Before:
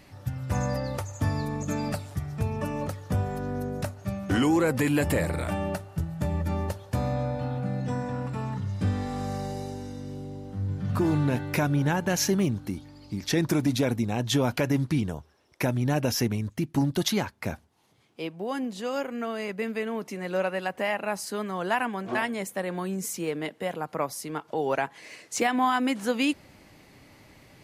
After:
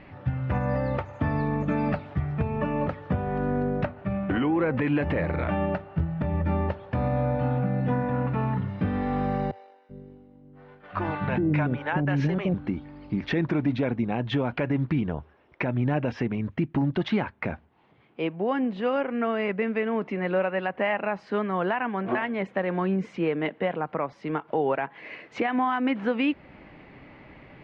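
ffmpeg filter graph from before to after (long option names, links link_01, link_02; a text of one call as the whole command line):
ffmpeg -i in.wav -filter_complex "[0:a]asettb=1/sr,asplit=3[link_01][link_02][link_03];[link_01]atrim=end=3.854[link_04];[link_02]atrim=start=3.85:end=4.82,asetpts=PTS-STARTPTS,afade=type=in:duration=0.004:curve=qsin,afade=type=out:start_time=0.966:duration=0.004:curve=qsin,lowpass=4200,acompressor=threshold=-28dB:ratio=3:attack=3.2:release=140:knee=1:detection=peak[link_05];[link_03]atrim=start=4.816[link_06];[link_04][link_05]acrossfade=duration=0.004:curve1=hsin:curve2=qsin[link_07];[link_07][link_06]acrossfade=duration=0.004:curve1=qsin:curve2=hsin,asettb=1/sr,asplit=3[link_08][link_09][link_10];[link_08]atrim=end=9.514[link_11];[link_09]atrim=start=9.51:end=12.54,asetpts=PTS-STARTPTS,afade=type=in:duration=0.004:curve=qsin,afade=type=out:start_time=3.026:duration=0.004:curve=qsin,agate=range=-33dB:threshold=-26dB:ratio=3:release=100:detection=peak,acrossover=split=500[link_12][link_13];[link_12]adelay=380[link_14];[link_14][link_13]amix=inputs=2:normalize=0,atrim=end_sample=133623[link_15];[link_10]atrim=start=12.536[link_16];[link_11][link_15]acrossfade=duration=0.004:curve1=hsin:curve2=qsin[link_17];[link_17][link_16]acrossfade=duration=0.004:curve1=qsin:curve2=hsin,lowpass=frequency=2700:width=0.5412,lowpass=frequency=2700:width=1.3066,equalizer=frequency=100:width_type=o:width=0.2:gain=-11.5,alimiter=limit=-22dB:level=0:latency=1:release=273,volume=6dB" out.wav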